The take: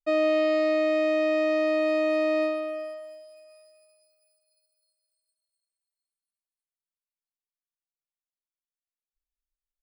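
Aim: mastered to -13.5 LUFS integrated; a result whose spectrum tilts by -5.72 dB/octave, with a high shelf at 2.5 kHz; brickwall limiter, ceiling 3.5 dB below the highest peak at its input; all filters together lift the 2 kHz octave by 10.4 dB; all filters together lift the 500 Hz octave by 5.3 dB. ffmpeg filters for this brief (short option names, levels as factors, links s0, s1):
-af "equalizer=f=500:t=o:g=6,equalizer=f=2000:t=o:g=7.5,highshelf=f=2500:g=9,volume=2.51,alimiter=limit=0.473:level=0:latency=1"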